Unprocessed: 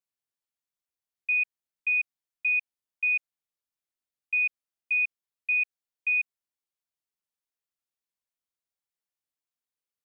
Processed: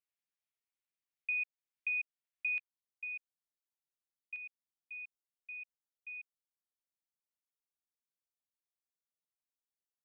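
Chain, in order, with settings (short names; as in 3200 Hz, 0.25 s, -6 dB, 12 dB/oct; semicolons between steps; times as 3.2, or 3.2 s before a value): bell 2300 Hz +9 dB 1 oct, from 2.58 s -5.5 dB, from 4.36 s -12.5 dB; compressor 2:1, threshold -33 dBFS, peak gain reduction 10 dB; gain -8.5 dB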